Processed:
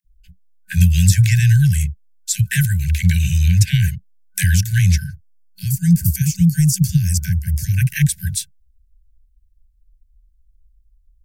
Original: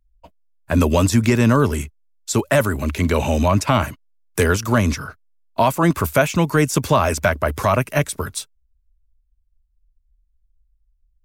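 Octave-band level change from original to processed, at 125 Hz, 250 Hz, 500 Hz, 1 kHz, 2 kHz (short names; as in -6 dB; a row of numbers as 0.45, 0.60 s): +7.5 dB, -1.5 dB, under -40 dB, under -40 dB, -3.5 dB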